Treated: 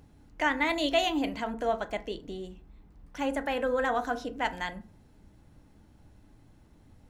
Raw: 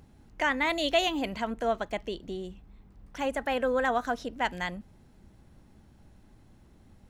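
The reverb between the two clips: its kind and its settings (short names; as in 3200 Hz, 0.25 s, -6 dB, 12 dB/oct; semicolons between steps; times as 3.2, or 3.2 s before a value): FDN reverb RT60 0.4 s, low-frequency decay 1.2×, high-frequency decay 0.5×, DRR 8 dB; gain -1.5 dB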